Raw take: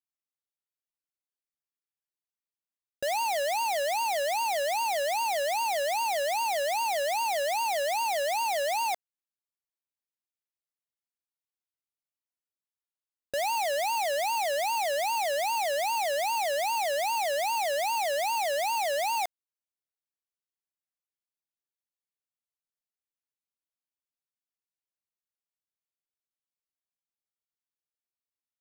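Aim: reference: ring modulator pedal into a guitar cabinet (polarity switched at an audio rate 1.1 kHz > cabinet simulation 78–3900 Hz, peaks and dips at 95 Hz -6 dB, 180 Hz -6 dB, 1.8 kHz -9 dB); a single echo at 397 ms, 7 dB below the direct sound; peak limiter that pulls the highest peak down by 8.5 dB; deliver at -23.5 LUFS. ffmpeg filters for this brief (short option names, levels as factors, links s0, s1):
-af "alimiter=level_in=4.22:limit=0.0631:level=0:latency=1,volume=0.237,aecho=1:1:397:0.447,aeval=exprs='val(0)*sgn(sin(2*PI*1100*n/s))':c=same,highpass=78,equalizer=f=95:t=q:w=4:g=-6,equalizer=f=180:t=q:w=4:g=-6,equalizer=f=1800:t=q:w=4:g=-9,lowpass=f=3900:w=0.5412,lowpass=f=3900:w=1.3066,volume=5.96"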